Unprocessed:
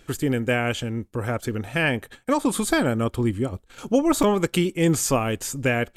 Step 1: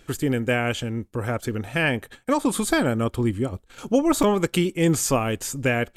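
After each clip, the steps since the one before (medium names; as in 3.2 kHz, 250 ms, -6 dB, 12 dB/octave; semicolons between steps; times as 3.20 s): no audible change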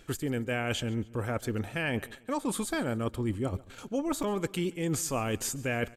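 reverse; compression, threshold -28 dBFS, peak gain reduction 13.5 dB; reverse; feedback delay 139 ms, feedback 39%, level -21 dB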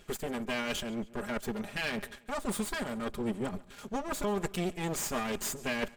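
comb filter that takes the minimum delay 4.9 ms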